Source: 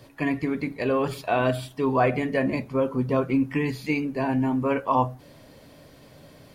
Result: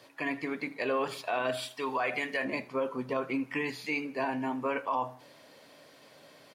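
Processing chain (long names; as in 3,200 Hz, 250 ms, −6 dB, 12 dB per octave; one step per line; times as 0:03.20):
meter weighting curve A
brickwall limiter −19 dBFS, peak gain reduction 7.5 dB
0:01.57–0:02.45: tilt shelving filter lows −5 dB
repeating echo 79 ms, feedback 47%, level −21 dB
level −2 dB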